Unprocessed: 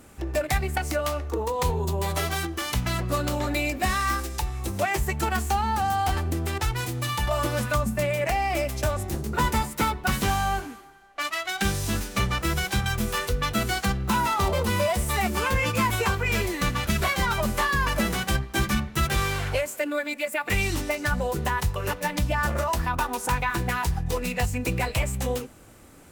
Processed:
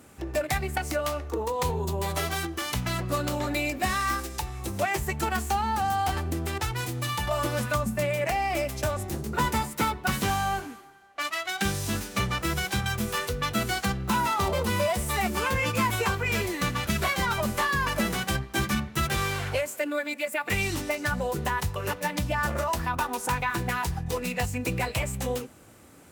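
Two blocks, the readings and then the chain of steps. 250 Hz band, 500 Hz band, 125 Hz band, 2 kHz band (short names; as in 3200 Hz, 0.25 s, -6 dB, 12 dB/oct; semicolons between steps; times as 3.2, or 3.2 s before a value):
-1.5 dB, -1.5 dB, -3.0 dB, -1.5 dB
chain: HPF 74 Hz; gain -1.5 dB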